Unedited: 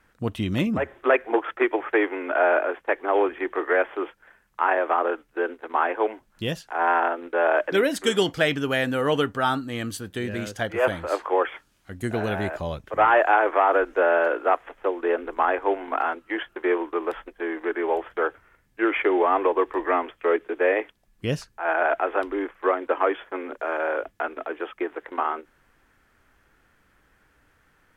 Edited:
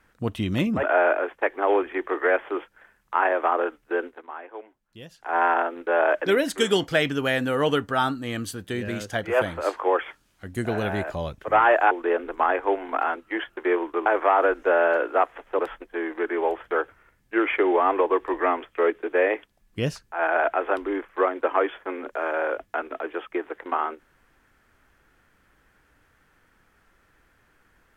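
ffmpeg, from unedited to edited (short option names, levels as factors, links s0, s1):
-filter_complex "[0:a]asplit=7[s0][s1][s2][s3][s4][s5][s6];[s0]atrim=end=0.832[s7];[s1]atrim=start=2.288:end=5.74,asetpts=PTS-STARTPTS,afade=t=out:st=3.212:d=0.24:silence=0.16788[s8];[s2]atrim=start=5.74:end=6.56,asetpts=PTS-STARTPTS,volume=0.168[s9];[s3]atrim=start=6.56:end=13.372,asetpts=PTS-STARTPTS,afade=t=in:d=0.24:silence=0.16788[s10];[s4]atrim=start=14.898:end=17.052[s11];[s5]atrim=start=13.368:end=14.902[s12];[s6]atrim=start=17.048[s13];[s8][s9][s10]concat=n=3:v=0:a=1[s14];[s7][s14]acrossfade=d=0.004:c1=hsin:c2=hsin[s15];[s15][s11]acrossfade=d=0.004:c1=hsin:c2=hsin[s16];[s16][s12]acrossfade=d=0.004:c1=hsin:c2=hsin[s17];[s17][s13]acrossfade=d=0.004:c1=hsin:c2=hsin"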